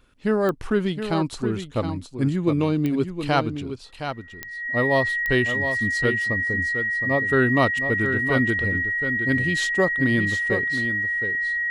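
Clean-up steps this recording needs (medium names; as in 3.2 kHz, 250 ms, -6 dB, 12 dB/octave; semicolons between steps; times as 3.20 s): de-click; band-stop 1.9 kHz, Q 30; inverse comb 717 ms -8.5 dB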